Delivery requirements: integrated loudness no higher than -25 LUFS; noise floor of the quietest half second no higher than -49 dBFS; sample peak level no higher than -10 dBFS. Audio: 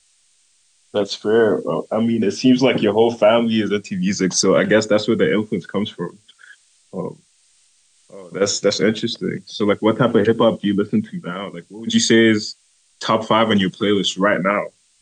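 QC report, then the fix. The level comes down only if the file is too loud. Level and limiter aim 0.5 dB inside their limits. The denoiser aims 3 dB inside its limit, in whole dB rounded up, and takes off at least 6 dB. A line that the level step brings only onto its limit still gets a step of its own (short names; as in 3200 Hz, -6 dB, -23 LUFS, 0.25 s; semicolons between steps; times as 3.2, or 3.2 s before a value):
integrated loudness -18.0 LUFS: fail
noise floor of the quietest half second -59 dBFS: OK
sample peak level -4.0 dBFS: fail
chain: gain -7.5 dB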